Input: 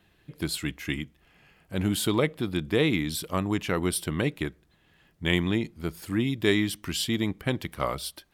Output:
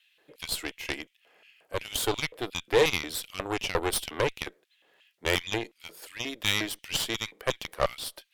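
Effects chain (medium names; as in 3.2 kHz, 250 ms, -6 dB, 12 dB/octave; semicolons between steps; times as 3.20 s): LFO high-pass square 2.8 Hz 500–2700 Hz; Chebyshev shaper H 8 -16 dB, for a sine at -8 dBFS; trim -2 dB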